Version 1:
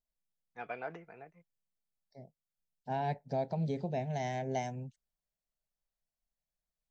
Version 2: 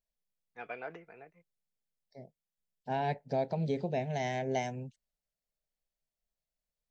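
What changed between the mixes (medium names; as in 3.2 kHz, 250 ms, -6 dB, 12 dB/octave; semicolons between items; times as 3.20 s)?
first voice -4.0 dB; master: add FFT filter 160 Hz 0 dB, 470 Hz +5 dB, 760 Hz +1 dB, 2.6 kHz +6 dB, 6 kHz +2 dB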